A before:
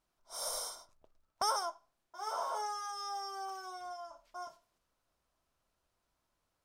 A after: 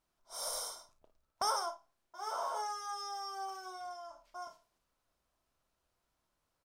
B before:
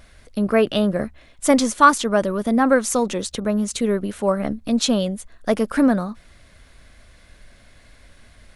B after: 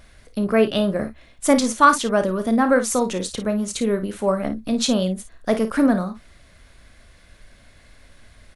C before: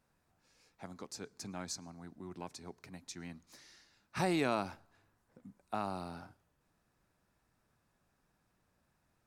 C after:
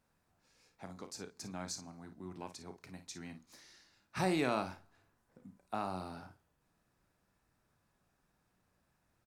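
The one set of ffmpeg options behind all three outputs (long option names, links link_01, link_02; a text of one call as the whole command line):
ffmpeg -i in.wav -af "aecho=1:1:32|54:0.251|0.266,volume=-1dB" out.wav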